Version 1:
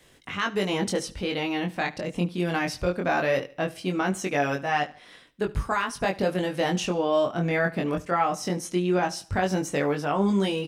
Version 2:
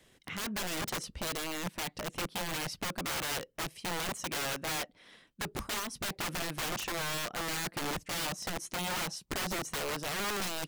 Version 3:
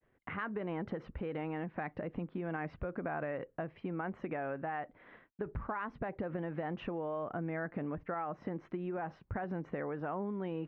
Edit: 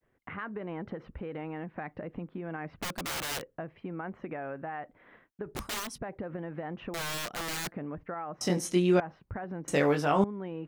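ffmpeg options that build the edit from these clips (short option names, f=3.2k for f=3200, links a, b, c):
-filter_complex "[1:a]asplit=3[a][b][c];[0:a]asplit=2[d][e];[2:a]asplit=6[f][g][h][i][j][k];[f]atrim=end=2.822[l];[a]atrim=start=2.818:end=3.422[m];[g]atrim=start=3.418:end=5.552[n];[b]atrim=start=5.548:end=5.982[o];[h]atrim=start=5.978:end=6.942[p];[c]atrim=start=6.938:end=7.722[q];[i]atrim=start=7.718:end=8.412[r];[d]atrim=start=8.408:end=9.002[s];[j]atrim=start=8.998:end=9.682[t];[e]atrim=start=9.678:end=10.242[u];[k]atrim=start=10.238[v];[l][m]acrossfade=d=0.004:c1=hsin:c2=hsin[w];[w][n]acrossfade=d=0.004:c1=hsin:c2=hsin[x];[x][o]acrossfade=d=0.004:c1=hsin:c2=hsin[y];[y][p]acrossfade=d=0.004:c1=hsin:c2=hsin[z];[z][q]acrossfade=d=0.004:c1=hsin:c2=hsin[aa];[aa][r]acrossfade=d=0.004:c1=hsin:c2=hsin[ab];[ab][s]acrossfade=d=0.004:c1=hsin:c2=hsin[ac];[ac][t]acrossfade=d=0.004:c1=hsin:c2=hsin[ad];[ad][u]acrossfade=d=0.004:c1=hsin:c2=hsin[ae];[ae][v]acrossfade=d=0.004:c1=hsin:c2=hsin"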